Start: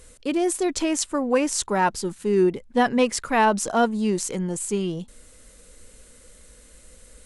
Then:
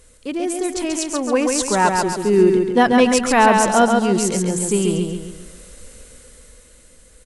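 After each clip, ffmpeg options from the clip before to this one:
-filter_complex "[0:a]dynaudnorm=f=260:g=11:m=3.76,asplit=2[s0][s1];[s1]aecho=0:1:137|274|411|548|685|822:0.631|0.278|0.122|0.0537|0.0236|0.0104[s2];[s0][s2]amix=inputs=2:normalize=0,volume=0.841"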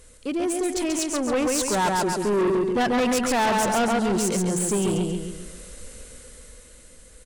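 -af "asoftclip=type=tanh:threshold=0.112"

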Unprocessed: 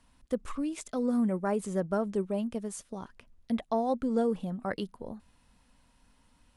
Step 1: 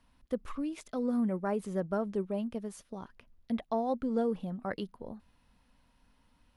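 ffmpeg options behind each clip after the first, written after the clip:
-af "equalizer=f=7900:t=o:w=0.76:g=-9.5,volume=0.75"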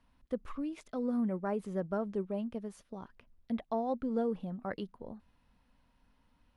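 -af "highshelf=f=4700:g=-8,volume=0.794"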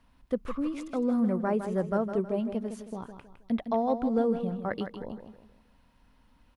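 -af "aecho=1:1:159|318|477|636:0.355|0.131|0.0486|0.018,volume=2"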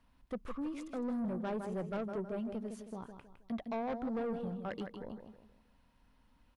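-af "asoftclip=type=tanh:threshold=0.0447,volume=0.531"

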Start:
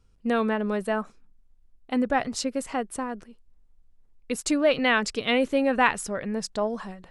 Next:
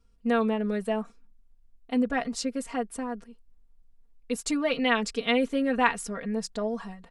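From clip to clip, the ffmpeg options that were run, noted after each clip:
-af "aecho=1:1:4.3:0.92,volume=0.531"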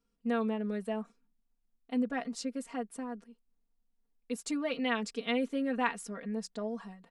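-af "lowshelf=f=140:t=q:w=1.5:g=-11.5,volume=0.398"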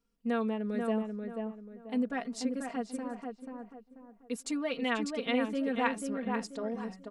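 -filter_complex "[0:a]asplit=2[s0][s1];[s1]adelay=487,lowpass=f=1700:p=1,volume=0.631,asplit=2[s2][s3];[s3]adelay=487,lowpass=f=1700:p=1,volume=0.34,asplit=2[s4][s5];[s5]adelay=487,lowpass=f=1700:p=1,volume=0.34,asplit=2[s6][s7];[s7]adelay=487,lowpass=f=1700:p=1,volume=0.34[s8];[s0][s2][s4][s6][s8]amix=inputs=5:normalize=0"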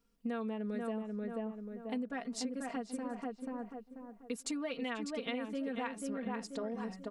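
-af "acompressor=threshold=0.0112:ratio=6,volume=1.5"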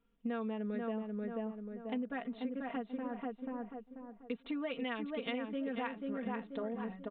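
-af "aresample=8000,aresample=44100"

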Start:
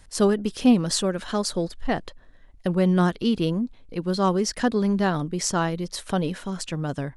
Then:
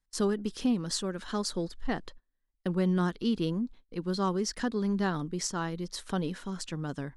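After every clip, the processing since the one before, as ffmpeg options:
-af "agate=range=0.0562:threshold=0.00891:ratio=16:detection=peak,equalizer=f=100:t=o:w=0.67:g=-11,equalizer=f=630:t=o:w=0.67:g=-7,equalizer=f=2500:t=o:w=0.67:g=-4,equalizer=f=10000:t=o:w=0.67:g=-4,alimiter=limit=0.211:level=0:latency=1:release=363,volume=0.596"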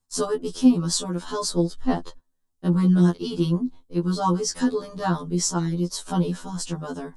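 -af "equalizer=f=250:t=o:w=1:g=3,equalizer=f=1000:t=o:w=1:g=5,equalizer=f=2000:t=o:w=1:g=-9,equalizer=f=8000:t=o:w=1:g=5,afftfilt=real='re*2*eq(mod(b,4),0)':imag='im*2*eq(mod(b,4),0)':win_size=2048:overlap=0.75,volume=2.51"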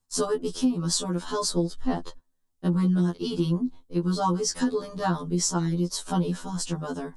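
-af "acompressor=threshold=0.1:ratio=6"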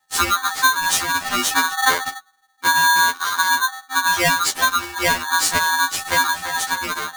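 -af "afftfilt=real='real(if(between(b,1,1008),(2*floor((b-1)/24)+1)*24-b,b),0)':imag='imag(if(between(b,1,1008),(2*floor((b-1)/24)+1)*24-b,b),0)*if(between(b,1,1008),-1,1)':win_size=2048:overlap=0.75,bandreject=f=57.76:t=h:w=4,bandreject=f=115.52:t=h:w=4,bandreject=f=173.28:t=h:w=4,bandreject=f=231.04:t=h:w=4,bandreject=f=288.8:t=h:w=4,aeval=exprs='val(0)*sgn(sin(2*PI*1300*n/s))':c=same,volume=2.24"

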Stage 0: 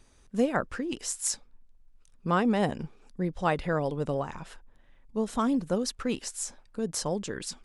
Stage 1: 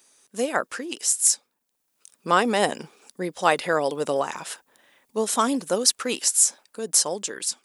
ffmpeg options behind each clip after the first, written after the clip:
-af "highpass=350,aemphasis=mode=production:type=75kf,dynaudnorm=f=140:g=7:m=2.82,volume=0.891"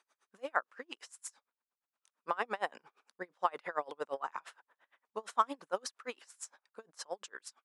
-af "alimiter=limit=0.335:level=0:latency=1:release=47,bandpass=f=1200:t=q:w=1.4:csg=0,aeval=exprs='val(0)*pow(10,-31*(0.5-0.5*cos(2*PI*8.7*n/s))/20)':c=same"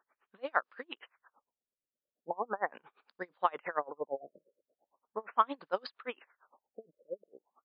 -af "afftfilt=real='re*lt(b*sr/1024,600*pow(5200/600,0.5+0.5*sin(2*PI*0.39*pts/sr)))':imag='im*lt(b*sr/1024,600*pow(5200/600,0.5+0.5*sin(2*PI*0.39*pts/sr)))':win_size=1024:overlap=0.75,volume=1.26"

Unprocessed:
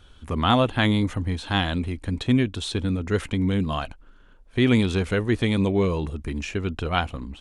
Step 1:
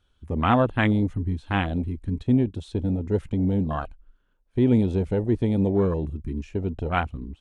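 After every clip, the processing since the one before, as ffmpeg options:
-af "afwtdn=0.0562"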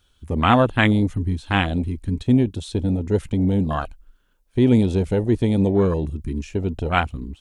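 -af "highshelf=f=3500:g=11.5,volume=1.5"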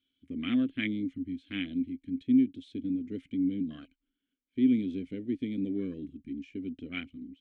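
-filter_complex "[0:a]asplit=3[s0][s1][s2];[s0]bandpass=f=270:t=q:w=8,volume=1[s3];[s1]bandpass=f=2290:t=q:w=8,volume=0.501[s4];[s2]bandpass=f=3010:t=q:w=8,volume=0.355[s5];[s3][s4][s5]amix=inputs=3:normalize=0,volume=0.75"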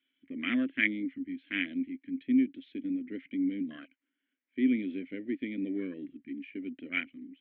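-af "highpass=410,equalizer=f=440:t=q:w=4:g=-8,equalizer=f=780:t=q:w=4:g=-8,equalizer=f=1200:t=q:w=4:g=-6,equalizer=f=1900:t=q:w=4:g=6,lowpass=f=2600:w=0.5412,lowpass=f=2600:w=1.3066,volume=2.24"

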